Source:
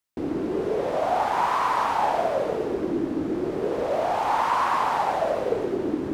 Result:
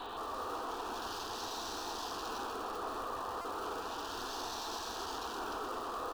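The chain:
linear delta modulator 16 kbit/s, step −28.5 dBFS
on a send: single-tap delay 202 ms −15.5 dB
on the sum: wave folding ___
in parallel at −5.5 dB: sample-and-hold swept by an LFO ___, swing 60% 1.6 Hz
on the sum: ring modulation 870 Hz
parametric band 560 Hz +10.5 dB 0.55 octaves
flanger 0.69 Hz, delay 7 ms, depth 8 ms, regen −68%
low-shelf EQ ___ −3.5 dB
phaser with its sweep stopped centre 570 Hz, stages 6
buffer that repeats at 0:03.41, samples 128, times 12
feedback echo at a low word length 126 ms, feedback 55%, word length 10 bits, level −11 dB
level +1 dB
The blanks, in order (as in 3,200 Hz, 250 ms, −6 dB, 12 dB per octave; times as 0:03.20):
−28.5 dBFS, 42×, 350 Hz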